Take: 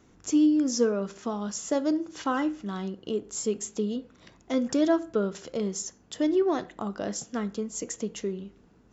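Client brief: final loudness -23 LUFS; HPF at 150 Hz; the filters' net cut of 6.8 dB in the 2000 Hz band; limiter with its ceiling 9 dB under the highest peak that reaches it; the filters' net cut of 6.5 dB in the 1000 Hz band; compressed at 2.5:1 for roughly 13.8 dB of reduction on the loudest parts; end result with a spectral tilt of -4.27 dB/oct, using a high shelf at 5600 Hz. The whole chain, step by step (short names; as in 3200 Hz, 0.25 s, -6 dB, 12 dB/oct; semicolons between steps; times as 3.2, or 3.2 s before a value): HPF 150 Hz; bell 1000 Hz -7.5 dB; bell 2000 Hz -5.5 dB; high shelf 5600 Hz -4.5 dB; compressor 2.5:1, threshold -41 dBFS; gain +21 dB; limiter -14.5 dBFS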